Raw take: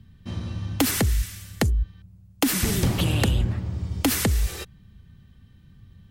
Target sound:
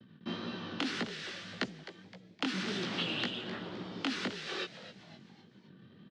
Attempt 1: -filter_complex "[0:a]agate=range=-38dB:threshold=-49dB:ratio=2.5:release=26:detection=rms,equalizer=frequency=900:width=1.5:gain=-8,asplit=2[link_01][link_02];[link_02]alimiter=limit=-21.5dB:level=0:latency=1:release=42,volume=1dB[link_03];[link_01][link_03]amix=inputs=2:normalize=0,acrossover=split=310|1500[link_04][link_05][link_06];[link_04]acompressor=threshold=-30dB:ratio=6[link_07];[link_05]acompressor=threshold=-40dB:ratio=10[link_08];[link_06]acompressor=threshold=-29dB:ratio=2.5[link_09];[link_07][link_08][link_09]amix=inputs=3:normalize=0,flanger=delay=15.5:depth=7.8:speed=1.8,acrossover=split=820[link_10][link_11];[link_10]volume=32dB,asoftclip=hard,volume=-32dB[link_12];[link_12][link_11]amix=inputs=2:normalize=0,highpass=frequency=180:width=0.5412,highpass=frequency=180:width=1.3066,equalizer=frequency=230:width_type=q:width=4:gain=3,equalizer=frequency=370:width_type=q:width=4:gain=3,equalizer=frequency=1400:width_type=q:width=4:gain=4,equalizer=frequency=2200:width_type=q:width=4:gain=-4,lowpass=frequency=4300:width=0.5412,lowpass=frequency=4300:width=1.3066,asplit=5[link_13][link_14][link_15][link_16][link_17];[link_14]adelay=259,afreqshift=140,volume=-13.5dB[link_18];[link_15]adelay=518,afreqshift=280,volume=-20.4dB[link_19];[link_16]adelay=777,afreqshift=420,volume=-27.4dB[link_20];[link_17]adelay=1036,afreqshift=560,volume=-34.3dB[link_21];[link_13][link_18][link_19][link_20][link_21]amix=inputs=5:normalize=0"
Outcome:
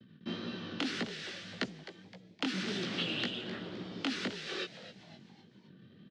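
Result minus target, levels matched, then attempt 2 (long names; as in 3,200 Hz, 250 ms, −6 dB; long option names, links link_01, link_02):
1,000 Hz band −2.5 dB
-filter_complex "[0:a]agate=range=-38dB:threshold=-49dB:ratio=2.5:release=26:detection=rms,asplit=2[link_01][link_02];[link_02]alimiter=limit=-21.5dB:level=0:latency=1:release=42,volume=1dB[link_03];[link_01][link_03]amix=inputs=2:normalize=0,acrossover=split=310|1500[link_04][link_05][link_06];[link_04]acompressor=threshold=-30dB:ratio=6[link_07];[link_05]acompressor=threshold=-40dB:ratio=10[link_08];[link_06]acompressor=threshold=-29dB:ratio=2.5[link_09];[link_07][link_08][link_09]amix=inputs=3:normalize=0,flanger=delay=15.5:depth=7.8:speed=1.8,acrossover=split=820[link_10][link_11];[link_10]volume=32dB,asoftclip=hard,volume=-32dB[link_12];[link_12][link_11]amix=inputs=2:normalize=0,highpass=frequency=180:width=0.5412,highpass=frequency=180:width=1.3066,equalizer=frequency=230:width_type=q:width=4:gain=3,equalizer=frequency=370:width_type=q:width=4:gain=3,equalizer=frequency=1400:width_type=q:width=4:gain=4,equalizer=frequency=2200:width_type=q:width=4:gain=-4,lowpass=frequency=4300:width=0.5412,lowpass=frequency=4300:width=1.3066,asplit=5[link_13][link_14][link_15][link_16][link_17];[link_14]adelay=259,afreqshift=140,volume=-13.5dB[link_18];[link_15]adelay=518,afreqshift=280,volume=-20.4dB[link_19];[link_16]adelay=777,afreqshift=420,volume=-27.4dB[link_20];[link_17]adelay=1036,afreqshift=560,volume=-34.3dB[link_21];[link_13][link_18][link_19][link_20][link_21]amix=inputs=5:normalize=0"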